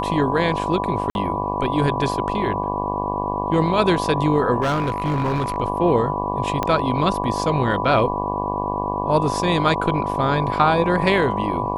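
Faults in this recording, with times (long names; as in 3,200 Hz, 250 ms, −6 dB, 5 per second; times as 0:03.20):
mains buzz 50 Hz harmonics 23 −26 dBFS
whistle 990 Hz −25 dBFS
0:01.10–0:01.15: drop-out 51 ms
0:04.61–0:05.58: clipping −17 dBFS
0:06.63: click −8 dBFS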